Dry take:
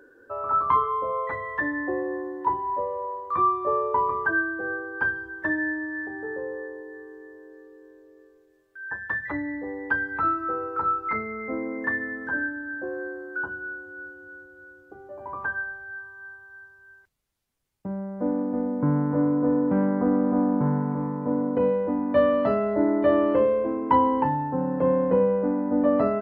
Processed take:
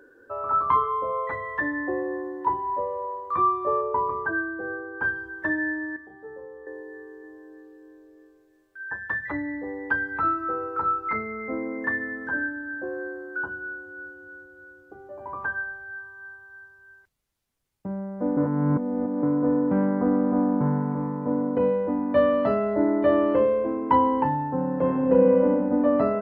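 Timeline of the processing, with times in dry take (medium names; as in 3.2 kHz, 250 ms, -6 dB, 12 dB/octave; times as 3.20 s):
3.81–5.04 s: treble shelf 2.1 kHz -10.5 dB
5.96–6.67 s: inharmonic resonator 66 Hz, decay 0.26 s, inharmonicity 0.008
7.19–8.83 s: flutter echo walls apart 7.7 m, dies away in 0.44 s
18.37–19.23 s: reverse
24.77–25.44 s: reverb throw, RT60 2.5 s, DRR 1.5 dB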